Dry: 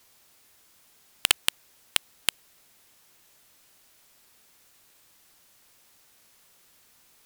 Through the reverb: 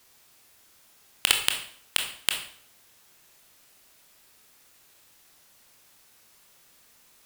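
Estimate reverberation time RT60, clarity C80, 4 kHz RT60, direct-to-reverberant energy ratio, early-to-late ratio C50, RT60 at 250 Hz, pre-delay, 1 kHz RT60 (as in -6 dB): 0.60 s, 10.5 dB, 0.50 s, 3.0 dB, 7.5 dB, 0.65 s, 20 ms, 0.60 s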